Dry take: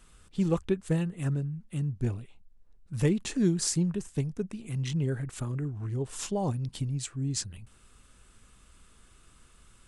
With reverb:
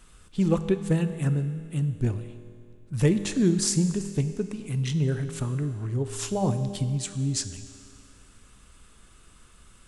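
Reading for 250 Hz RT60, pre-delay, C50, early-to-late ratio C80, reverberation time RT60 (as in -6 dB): 2.3 s, 5 ms, 11.0 dB, 11.5 dB, 2.3 s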